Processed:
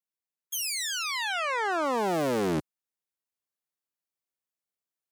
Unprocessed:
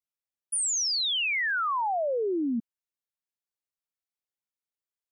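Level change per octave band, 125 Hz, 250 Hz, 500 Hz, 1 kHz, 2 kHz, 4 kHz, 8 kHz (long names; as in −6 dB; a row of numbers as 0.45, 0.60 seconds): can't be measured, 0.0 dB, +1.5 dB, 0.0 dB, −2.0 dB, −5.0 dB, −5.5 dB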